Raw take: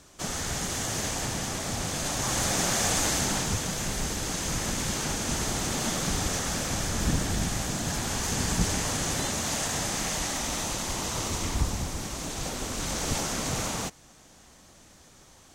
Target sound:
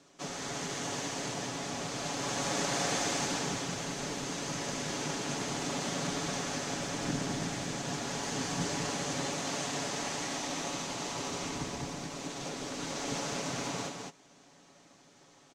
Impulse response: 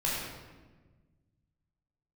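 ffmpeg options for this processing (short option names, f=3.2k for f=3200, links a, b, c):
-filter_complex "[0:a]aecho=1:1:7.1:0.47,aecho=1:1:206:0.631,asplit=2[a][b];[b]acrusher=samples=24:mix=1:aa=0.000001,volume=-8.5dB[c];[a][c]amix=inputs=2:normalize=0,acrossover=split=150 7400:gain=0.0891 1 0.126[d][e][f];[d][e][f]amix=inputs=3:normalize=0,volume=-7dB"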